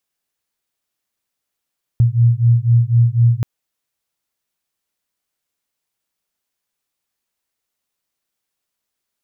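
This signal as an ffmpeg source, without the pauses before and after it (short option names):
-f lavfi -i "aevalsrc='0.224*(sin(2*PI*116*t)+sin(2*PI*120*t))':d=1.43:s=44100"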